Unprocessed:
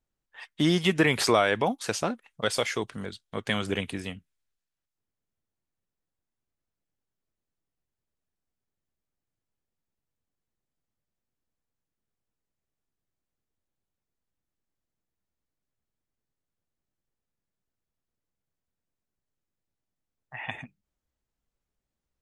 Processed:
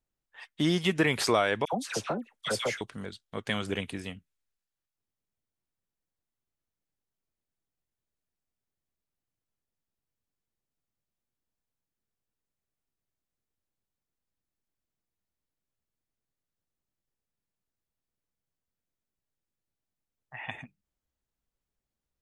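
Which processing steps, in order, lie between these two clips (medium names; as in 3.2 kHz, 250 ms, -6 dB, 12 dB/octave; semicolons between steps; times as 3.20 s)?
1.65–2.81 s: phase dispersion lows, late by 81 ms, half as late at 1.3 kHz; trim -3 dB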